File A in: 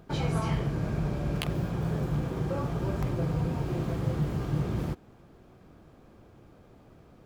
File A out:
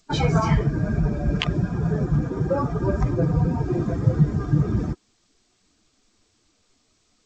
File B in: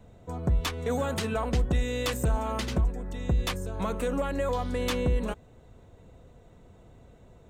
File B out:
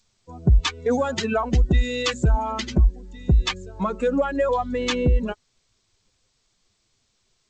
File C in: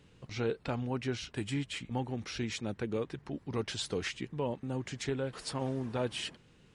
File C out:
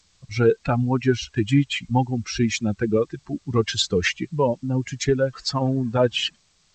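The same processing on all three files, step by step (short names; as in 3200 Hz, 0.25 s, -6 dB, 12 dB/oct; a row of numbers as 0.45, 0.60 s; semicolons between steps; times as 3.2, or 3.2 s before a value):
per-bin expansion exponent 2; G.722 64 kbps 16000 Hz; match loudness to -23 LUFS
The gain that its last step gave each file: +13.5, +10.5, +18.0 dB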